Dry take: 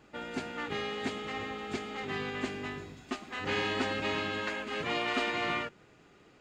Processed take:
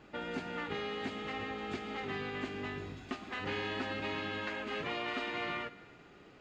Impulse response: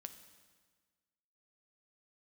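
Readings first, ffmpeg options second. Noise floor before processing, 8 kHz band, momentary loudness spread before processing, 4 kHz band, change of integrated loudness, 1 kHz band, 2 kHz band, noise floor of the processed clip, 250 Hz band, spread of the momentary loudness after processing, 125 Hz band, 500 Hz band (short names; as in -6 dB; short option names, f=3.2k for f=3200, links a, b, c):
-60 dBFS, -10.0 dB, 9 LU, -5.0 dB, -4.0 dB, -4.0 dB, -4.0 dB, -57 dBFS, -3.5 dB, 7 LU, -2.0 dB, -3.5 dB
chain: -filter_complex "[0:a]acompressor=threshold=-39dB:ratio=3,asplit=2[a][b];[1:a]atrim=start_sample=2205,lowpass=5.9k[c];[b][c]afir=irnorm=-1:irlink=0,volume=9dB[d];[a][d]amix=inputs=2:normalize=0,volume=-5.5dB"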